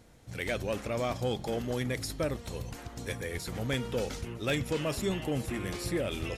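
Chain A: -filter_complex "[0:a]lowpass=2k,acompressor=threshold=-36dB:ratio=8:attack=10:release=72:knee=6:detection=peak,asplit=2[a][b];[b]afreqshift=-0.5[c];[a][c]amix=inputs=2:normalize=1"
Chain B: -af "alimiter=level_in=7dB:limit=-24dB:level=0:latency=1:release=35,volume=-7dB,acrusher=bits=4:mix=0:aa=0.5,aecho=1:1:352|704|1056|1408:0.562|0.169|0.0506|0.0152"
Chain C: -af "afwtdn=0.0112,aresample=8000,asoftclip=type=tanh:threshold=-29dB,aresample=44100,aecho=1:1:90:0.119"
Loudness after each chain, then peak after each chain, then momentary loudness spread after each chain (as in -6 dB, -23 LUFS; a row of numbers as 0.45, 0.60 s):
-43.0, -50.5, -37.0 LUFS; -28.5, -31.5, -26.0 dBFS; 5, 6, 6 LU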